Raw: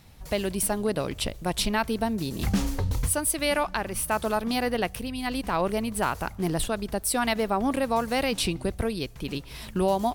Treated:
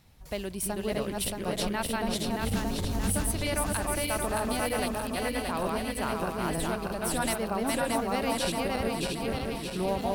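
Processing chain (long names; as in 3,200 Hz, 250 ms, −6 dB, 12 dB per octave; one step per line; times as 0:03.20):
feedback delay that plays each chunk backwards 313 ms, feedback 74%, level −1 dB
level −7 dB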